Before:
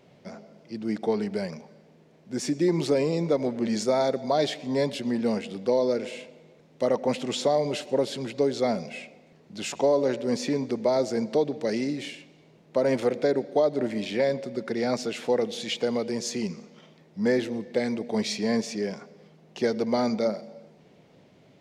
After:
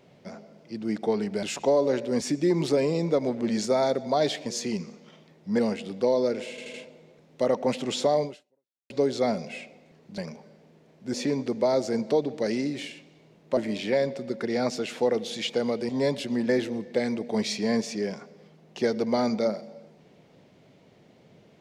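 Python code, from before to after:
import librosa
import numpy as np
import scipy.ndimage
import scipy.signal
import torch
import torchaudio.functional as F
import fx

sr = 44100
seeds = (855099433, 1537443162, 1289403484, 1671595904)

y = fx.edit(x, sr, fx.swap(start_s=1.43, length_s=0.96, other_s=9.59, other_length_s=0.78),
    fx.swap(start_s=4.64, length_s=0.6, other_s=16.16, other_length_s=1.13),
    fx.stutter(start_s=6.15, slice_s=0.08, count=4),
    fx.fade_out_span(start_s=7.64, length_s=0.67, curve='exp'),
    fx.cut(start_s=12.8, length_s=1.04), tone=tone)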